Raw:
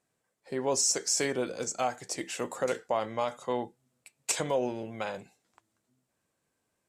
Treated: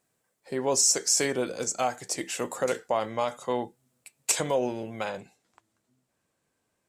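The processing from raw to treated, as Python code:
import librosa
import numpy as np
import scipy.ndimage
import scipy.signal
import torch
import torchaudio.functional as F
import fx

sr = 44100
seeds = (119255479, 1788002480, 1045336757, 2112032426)

y = fx.high_shelf(x, sr, hz=10000.0, db=fx.steps((0.0, 8.0), (5.09, -3.0)))
y = y * 10.0 ** (2.5 / 20.0)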